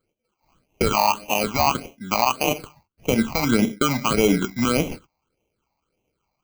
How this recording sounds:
aliases and images of a low sample rate 1,800 Hz, jitter 0%
phaser sweep stages 8, 1.7 Hz, lowest notch 410–1,400 Hz

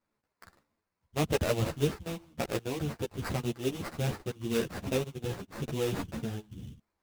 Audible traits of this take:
aliases and images of a low sample rate 3,200 Hz, jitter 20%
a shimmering, thickened sound

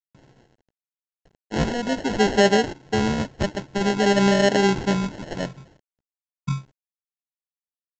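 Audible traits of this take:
a quantiser's noise floor 10 bits, dither none
phaser sweep stages 2, 0.51 Hz, lowest notch 430–1,200 Hz
aliases and images of a low sample rate 1,200 Hz, jitter 0%
mu-law

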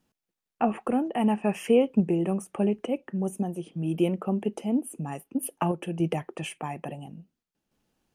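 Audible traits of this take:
sample-and-hold tremolo

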